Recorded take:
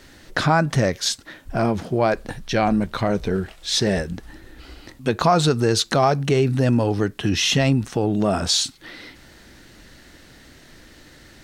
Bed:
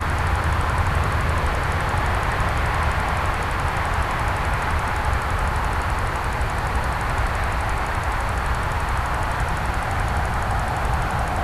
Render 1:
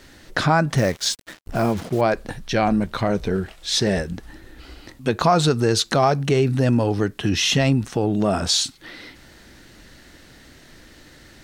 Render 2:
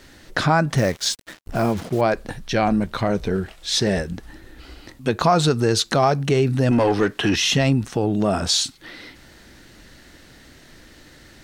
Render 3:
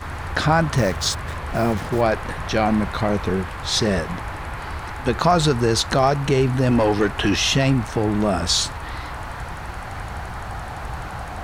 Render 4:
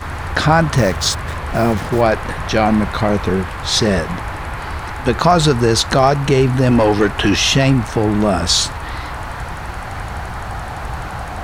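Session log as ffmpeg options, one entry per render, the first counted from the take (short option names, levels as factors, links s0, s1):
-filter_complex "[0:a]asettb=1/sr,asplit=3[s0][s1][s2];[s0]atrim=end=0.774[s3];[s1]atrim=start=0.77:end=2.01,asetpts=PTS-STARTPTS,afade=t=in:d=0.004:c=qsin,afade=t=out:st=1.236:d=0.004:c=qsin,acrusher=bits=5:mix=0:aa=0.5[s4];[s2]atrim=start=2.006[s5];[s3][s4]acrossfade=d=0.004:c1=hsin:c2=qsin[s6];[s6][s5]acrossfade=d=0.004:c1=qsin:c2=hsin"
-filter_complex "[0:a]asettb=1/sr,asplit=3[s0][s1][s2];[s0]atrim=end=6.714[s3];[s1]atrim=start=6.71:end=7.36,asetpts=PTS-STARTPTS,afade=t=in:d=0.004:c=qsin,afade=t=out:st=0.646:d=0.004:c=qsin,asplit=2[s4][s5];[s5]highpass=f=720:p=1,volume=7.94,asoftclip=type=tanh:threshold=0.398[s6];[s4][s6]amix=inputs=2:normalize=0,lowpass=f=2700:p=1,volume=0.501[s7];[s2]atrim=start=7.356[s8];[s3][s7]acrossfade=d=0.004:c1=hsin:c2=qsin[s9];[s9][s8]acrossfade=d=0.004:c1=qsin:c2=hsin"
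-filter_complex "[1:a]volume=0.376[s0];[0:a][s0]amix=inputs=2:normalize=0"
-af "volume=1.78,alimiter=limit=0.891:level=0:latency=1"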